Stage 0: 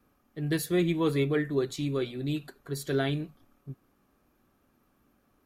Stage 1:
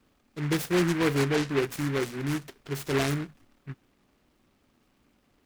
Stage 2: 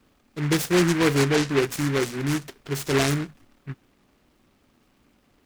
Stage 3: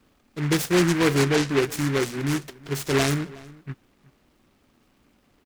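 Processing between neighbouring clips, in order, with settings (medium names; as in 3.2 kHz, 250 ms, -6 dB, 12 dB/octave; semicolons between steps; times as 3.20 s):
delay time shaken by noise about 1.5 kHz, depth 0.15 ms; trim +1.5 dB
dynamic bell 6.7 kHz, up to +4 dB, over -49 dBFS, Q 0.82; trim +4.5 dB
echo from a far wall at 63 m, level -21 dB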